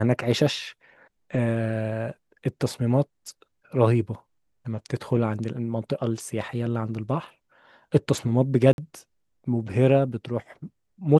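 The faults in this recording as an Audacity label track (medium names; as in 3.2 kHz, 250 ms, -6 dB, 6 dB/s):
8.730000	8.780000	dropout 51 ms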